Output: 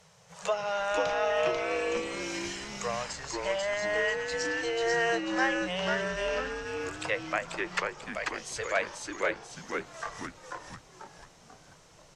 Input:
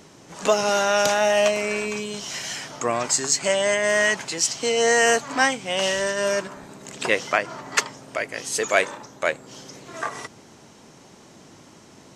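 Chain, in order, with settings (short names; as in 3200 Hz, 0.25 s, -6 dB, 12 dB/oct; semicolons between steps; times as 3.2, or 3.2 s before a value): elliptic band-stop 180–460 Hz; treble ducked by the level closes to 3000 Hz, closed at -19.5 dBFS; on a send: frequency-shifting echo 0.49 s, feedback 45%, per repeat -140 Hz, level -3 dB; on the sum: gain -8.5 dB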